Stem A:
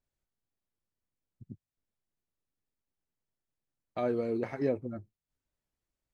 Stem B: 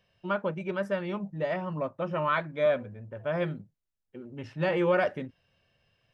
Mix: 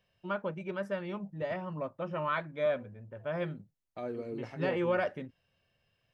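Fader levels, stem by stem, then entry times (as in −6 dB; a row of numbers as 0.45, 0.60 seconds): −7.5, −5.0 decibels; 0.00, 0.00 seconds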